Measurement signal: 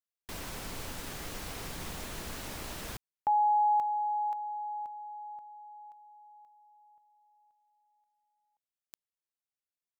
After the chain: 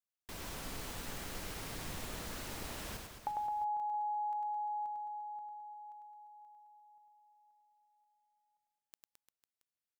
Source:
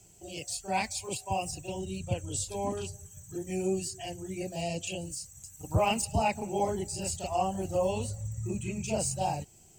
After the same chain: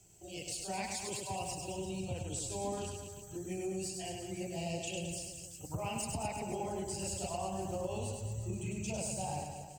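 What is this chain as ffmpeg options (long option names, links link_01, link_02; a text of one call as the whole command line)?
ffmpeg -i in.wav -af "acompressor=threshold=-38dB:ratio=10:attack=61:release=35:knee=1:detection=peak,aecho=1:1:100|215|347.2|499.3|674.2:0.631|0.398|0.251|0.158|0.1,volume=-5dB" out.wav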